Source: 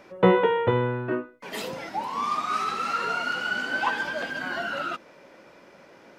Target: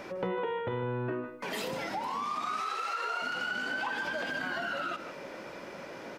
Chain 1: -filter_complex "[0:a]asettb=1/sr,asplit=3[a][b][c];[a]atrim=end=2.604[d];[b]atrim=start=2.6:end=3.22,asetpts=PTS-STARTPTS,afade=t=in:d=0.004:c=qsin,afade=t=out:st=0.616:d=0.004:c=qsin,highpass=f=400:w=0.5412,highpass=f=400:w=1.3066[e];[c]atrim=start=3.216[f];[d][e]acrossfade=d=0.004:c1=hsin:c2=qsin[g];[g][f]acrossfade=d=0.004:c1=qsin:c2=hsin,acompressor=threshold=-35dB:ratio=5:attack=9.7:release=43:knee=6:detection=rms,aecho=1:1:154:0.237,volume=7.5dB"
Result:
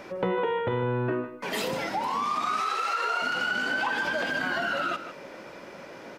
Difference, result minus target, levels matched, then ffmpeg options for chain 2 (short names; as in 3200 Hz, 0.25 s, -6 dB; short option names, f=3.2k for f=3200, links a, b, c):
compressor: peak gain reduction -6 dB
-filter_complex "[0:a]asettb=1/sr,asplit=3[a][b][c];[a]atrim=end=2.604[d];[b]atrim=start=2.6:end=3.22,asetpts=PTS-STARTPTS,afade=t=in:d=0.004:c=qsin,afade=t=out:st=0.616:d=0.004:c=qsin,highpass=f=400:w=0.5412,highpass=f=400:w=1.3066[e];[c]atrim=start=3.216[f];[d][e]acrossfade=d=0.004:c1=hsin:c2=qsin[g];[g][f]acrossfade=d=0.004:c1=qsin:c2=hsin,acompressor=threshold=-42.5dB:ratio=5:attack=9.7:release=43:knee=6:detection=rms,aecho=1:1:154:0.237,volume=7.5dB"